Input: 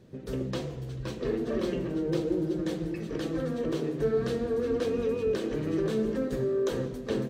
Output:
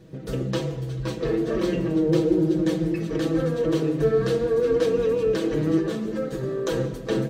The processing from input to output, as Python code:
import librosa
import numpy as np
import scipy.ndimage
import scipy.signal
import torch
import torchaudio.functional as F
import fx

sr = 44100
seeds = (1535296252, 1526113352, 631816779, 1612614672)

y = x + 0.7 * np.pad(x, (int(6.2 * sr / 1000.0), 0))[:len(x)]
y = fx.ensemble(y, sr, at=(5.78, 6.42), fade=0.02)
y = F.gain(torch.from_numpy(y), 4.5).numpy()